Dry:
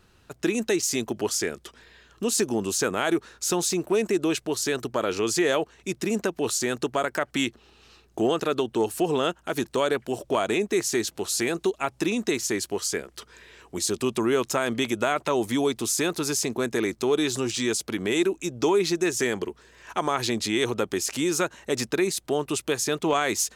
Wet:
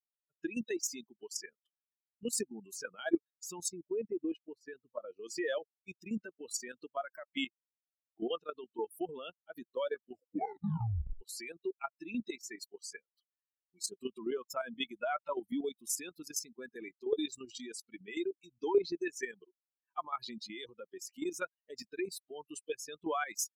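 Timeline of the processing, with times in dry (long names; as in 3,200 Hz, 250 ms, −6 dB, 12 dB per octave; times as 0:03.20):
0:03.69–0:05.24: high-shelf EQ 3,000 Hz −10.5 dB
0:10.07: tape stop 1.14 s
whole clip: spectral dynamics exaggerated over time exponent 3; output level in coarse steps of 11 dB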